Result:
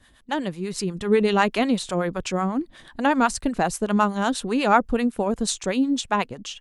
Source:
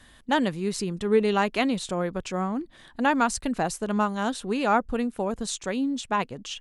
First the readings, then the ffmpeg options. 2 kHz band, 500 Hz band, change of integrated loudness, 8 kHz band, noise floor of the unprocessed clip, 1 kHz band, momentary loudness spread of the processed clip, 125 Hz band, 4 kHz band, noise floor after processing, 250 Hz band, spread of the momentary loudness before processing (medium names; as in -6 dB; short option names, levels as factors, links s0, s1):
+2.5 dB, +2.5 dB, +3.0 dB, +3.5 dB, -54 dBFS, +3.0 dB, 9 LU, +3.5 dB, +3.0 dB, -56 dBFS, +3.5 dB, 7 LU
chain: -filter_complex "[0:a]dynaudnorm=f=300:g=5:m=2.66,acrossover=split=630[s0][s1];[s0]aeval=exprs='val(0)*(1-0.7/2+0.7/2*cos(2*PI*8.1*n/s))':c=same[s2];[s1]aeval=exprs='val(0)*(1-0.7/2-0.7/2*cos(2*PI*8.1*n/s))':c=same[s3];[s2][s3]amix=inputs=2:normalize=0"